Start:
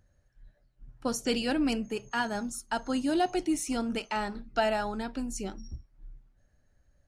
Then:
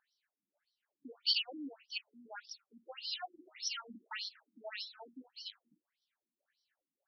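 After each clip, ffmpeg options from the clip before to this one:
ffmpeg -i in.wav -filter_complex "[0:a]aderivative,acrossover=split=240|3000[link_01][link_02][link_03];[link_02]acompressor=threshold=-52dB:ratio=3[link_04];[link_01][link_04][link_03]amix=inputs=3:normalize=0,afftfilt=real='re*between(b*sr/1024,230*pow(4300/230,0.5+0.5*sin(2*PI*1.7*pts/sr))/1.41,230*pow(4300/230,0.5+0.5*sin(2*PI*1.7*pts/sr))*1.41)':imag='im*between(b*sr/1024,230*pow(4300/230,0.5+0.5*sin(2*PI*1.7*pts/sr))/1.41,230*pow(4300/230,0.5+0.5*sin(2*PI*1.7*pts/sr))*1.41)':win_size=1024:overlap=0.75,volume=13.5dB" out.wav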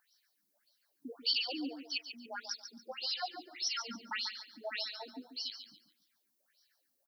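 ffmpeg -i in.wav -filter_complex "[0:a]acrossover=split=2800[link_01][link_02];[link_02]acompressor=threshold=-45dB:ratio=4:attack=1:release=60[link_03];[link_01][link_03]amix=inputs=2:normalize=0,aexciter=amount=3:drive=2.9:freq=4400,aecho=1:1:141|282|423:0.335|0.0938|0.0263,volume=5dB" out.wav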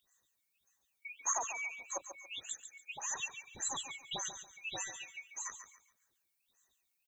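ffmpeg -i in.wav -af "afftfilt=real='real(if(lt(b,920),b+92*(1-2*mod(floor(b/92),2)),b),0)':imag='imag(if(lt(b,920),b+92*(1-2*mod(floor(b/92),2)),b),0)':win_size=2048:overlap=0.75,volume=-2dB" out.wav

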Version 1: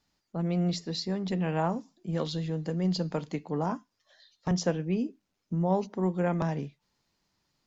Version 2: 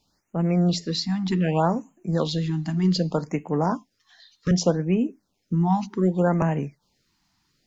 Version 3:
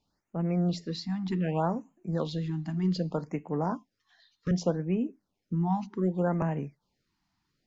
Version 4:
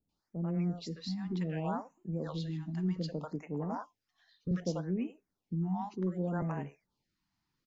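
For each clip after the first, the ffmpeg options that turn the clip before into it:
ffmpeg -i in.wav -af "afftfilt=real='re*(1-between(b*sr/1024,450*pow(4500/450,0.5+0.5*sin(2*PI*0.65*pts/sr))/1.41,450*pow(4500/450,0.5+0.5*sin(2*PI*0.65*pts/sr))*1.41))':imag='im*(1-between(b*sr/1024,450*pow(4500/450,0.5+0.5*sin(2*PI*0.65*pts/sr))/1.41,450*pow(4500/450,0.5+0.5*sin(2*PI*0.65*pts/sr))*1.41))':win_size=1024:overlap=0.75,volume=7dB" out.wav
ffmpeg -i in.wav -af "highshelf=frequency=3900:gain=-9.5,volume=-6.5dB" out.wav
ffmpeg -i in.wav -filter_complex "[0:a]acrossover=split=590[link_01][link_02];[link_02]adelay=90[link_03];[link_01][link_03]amix=inputs=2:normalize=0,volume=-5dB" out.wav

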